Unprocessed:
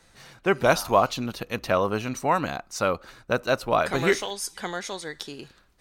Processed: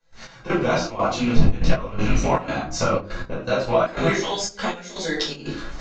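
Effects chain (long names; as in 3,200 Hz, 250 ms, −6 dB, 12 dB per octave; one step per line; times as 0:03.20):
loose part that buzzes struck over −37 dBFS, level −27 dBFS
0:01.35–0:02.16: wind on the microphone 190 Hz −21 dBFS
camcorder AGC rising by 52 dB per second
rectangular room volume 360 cubic metres, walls furnished, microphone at 5.3 metres
downsampling to 16,000 Hz
0:04.75–0:05.17: parametric band 980 Hz −8 dB 1.5 octaves
gate pattern ".x..xxx.xxxx" 121 BPM −12 dB
0:02.68–0:03.41: spectral tilt −1.5 dB per octave
on a send: feedback echo with a band-pass in the loop 74 ms, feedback 46%, band-pass 390 Hz, level −15 dB
on the sum: micro pitch shift up and down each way 17 cents
level −6 dB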